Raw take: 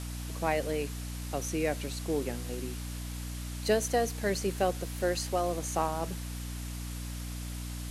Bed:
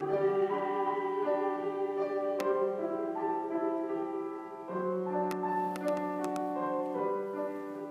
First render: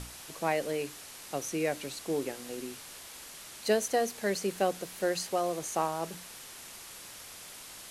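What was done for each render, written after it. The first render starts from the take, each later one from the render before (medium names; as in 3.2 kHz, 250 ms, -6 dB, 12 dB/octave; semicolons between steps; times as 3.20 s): hum notches 60/120/180/240/300 Hz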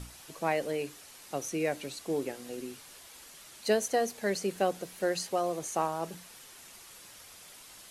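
noise reduction 6 dB, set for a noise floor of -48 dBFS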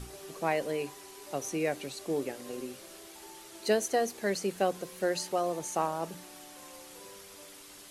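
add bed -19.5 dB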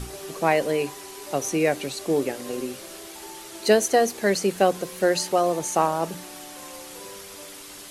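trim +9 dB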